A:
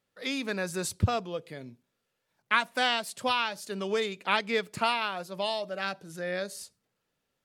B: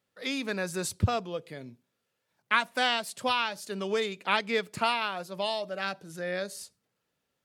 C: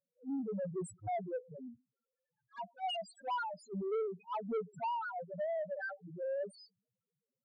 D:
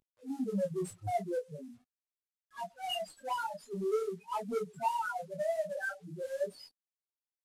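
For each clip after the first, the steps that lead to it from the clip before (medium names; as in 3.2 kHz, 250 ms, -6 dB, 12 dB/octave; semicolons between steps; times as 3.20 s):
high-pass 48 Hz
loudest bins only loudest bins 1; saturation -35 dBFS, distortion -12 dB; attacks held to a fixed rise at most 340 dB/s; trim +4 dB
CVSD coder 64 kbps; detune thickener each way 15 cents; trim +7 dB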